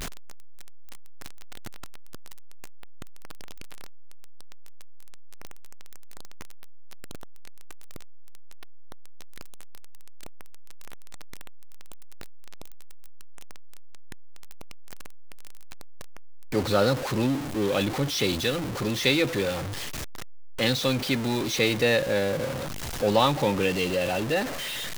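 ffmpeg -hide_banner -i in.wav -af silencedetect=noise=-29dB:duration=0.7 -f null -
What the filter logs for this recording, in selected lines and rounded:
silence_start: 0.00
silence_end: 16.53 | silence_duration: 16.53
silence_start: 19.61
silence_end: 20.59 | silence_duration: 0.99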